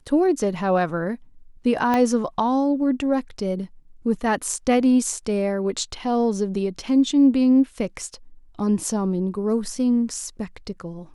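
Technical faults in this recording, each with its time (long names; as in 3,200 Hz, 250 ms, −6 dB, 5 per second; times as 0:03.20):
0:01.94: click −9 dBFS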